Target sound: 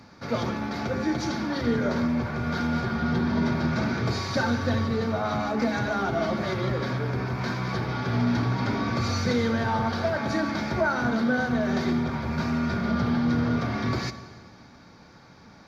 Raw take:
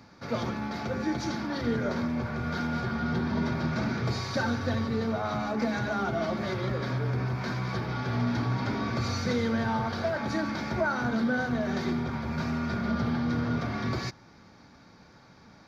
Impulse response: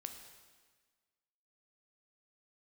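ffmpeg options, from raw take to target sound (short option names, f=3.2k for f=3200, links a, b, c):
-filter_complex "[0:a]asplit=2[a][b];[1:a]atrim=start_sample=2205,asetrate=36603,aresample=44100[c];[b][c]afir=irnorm=-1:irlink=0,volume=1dB[d];[a][d]amix=inputs=2:normalize=0,volume=-1.5dB"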